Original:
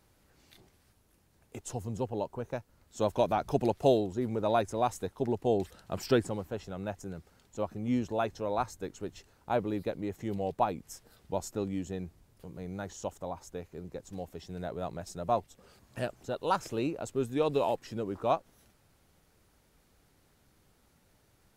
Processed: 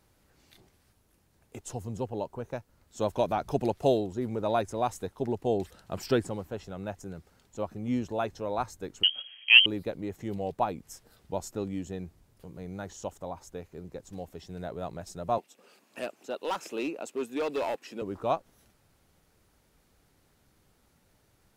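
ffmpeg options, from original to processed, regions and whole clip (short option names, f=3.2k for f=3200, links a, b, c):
-filter_complex "[0:a]asettb=1/sr,asplit=3[a][b][c];[a]atrim=end=9.034[d];[b]atrim=start=9.03:end=9.66,asetpts=PTS-STARTPTS,afade=t=in:d=0.004:c=qsin,afade=t=out:st=0.626:d=0.004:c=qsin,tiltshelf=f=1.5k:g=10,acontrast=45,lowpass=f=2.8k:t=q:w=0.5098,lowpass=f=2.8k:t=q:w=0.6013,lowpass=f=2.8k:t=q:w=0.9,lowpass=f=2.8k:t=q:w=2.563,afreqshift=-3300[e];[c]atrim=start=9.656[f];[d][e]acrossfade=d=0.004:c1=hsin:c2=qsin[g];[g][f]acrossfade=d=0.004:c1=qsin:c2=hsin,asettb=1/sr,asplit=3[h][i][j];[h]atrim=end=15.384[k];[i]atrim=start=15.38:end=18.02,asetpts=PTS-STARTPTS,afade=t=in:d=0.004:c=qsin,afade=t=out:st=2.636:d=0.004:c=qsin,highpass=f=230:w=0.5412,highpass=f=230:w=1.3066,equalizer=f=2.6k:t=o:w=0.29:g=8,asoftclip=type=hard:threshold=-26dB[l];[j]atrim=start=18.016[m];[k][l]acrossfade=d=0.004:c1=hsin:c2=qsin[n];[n][m]acrossfade=d=0.004:c1=qsin:c2=hsin"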